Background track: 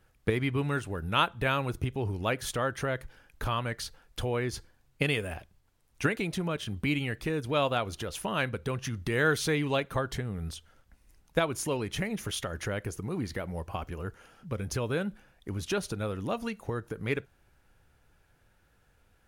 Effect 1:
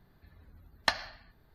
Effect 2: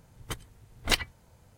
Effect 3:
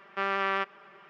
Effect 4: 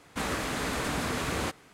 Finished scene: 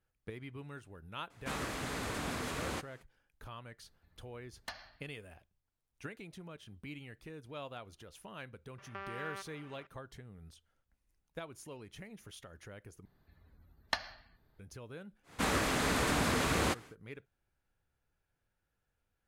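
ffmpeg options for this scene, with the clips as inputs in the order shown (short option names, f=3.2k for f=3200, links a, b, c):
-filter_complex "[4:a]asplit=2[a][b];[1:a]asplit=2[c][d];[0:a]volume=-17.5dB[e];[c]asoftclip=type=hard:threshold=-24dB[f];[3:a]acompressor=threshold=-33dB:ratio=6:attack=3.2:release=140:knee=1:detection=peak[g];[e]asplit=2[h][i];[h]atrim=end=13.054[j];[d]atrim=end=1.54,asetpts=PTS-STARTPTS,volume=-6.5dB[k];[i]atrim=start=14.586[l];[a]atrim=end=1.73,asetpts=PTS-STARTPTS,volume=-7.5dB,afade=t=in:d=0.004:c=hsin,afade=t=out:st=1.726:d=0.004:c=hsin,adelay=1300[m];[f]atrim=end=1.54,asetpts=PTS-STARTPTS,volume=-11.5dB,afade=t=in:d=0.004:c=hsin,afade=t=out:st=1.536:d=0.004:c=hsin,adelay=3800[n];[g]atrim=end=1.09,asetpts=PTS-STARTPTS,volume=-5.5dB,afade=t=in:d=0.004:c=hsin,afade=t=out:st=1.086:d=0.004:c=hsin,adelay=8780[o];[b]atrim=end=1.73,asetpts=PTS-STARTPTS,afade=t=in:d=0.1,afade=t=out:st=1.63:d=0.1,adelay=15230[p];[j][k]acrossfade=d=0.004:c1=hsin:c2=hsin[q];[q][l]acrossfade=d=0.004:c1=hsin:c2=hsin[r];[r][m][n][o][p]amix=inputs=5:normalize=0"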